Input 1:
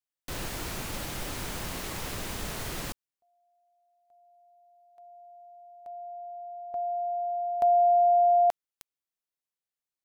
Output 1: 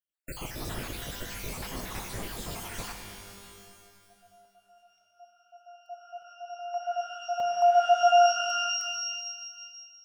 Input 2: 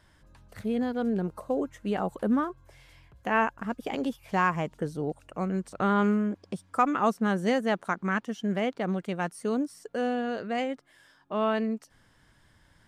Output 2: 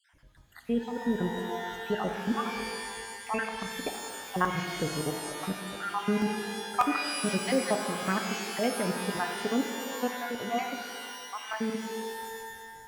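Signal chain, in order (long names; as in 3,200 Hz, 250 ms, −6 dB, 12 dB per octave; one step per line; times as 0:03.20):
time-frequency cells dropped at random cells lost 64%
regular buffer underruns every 0.59 s, samples 128, zero, from 0:00.91
reverb with rising layers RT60 1.9 s, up +12 semitones, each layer −2 dB, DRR 5 dB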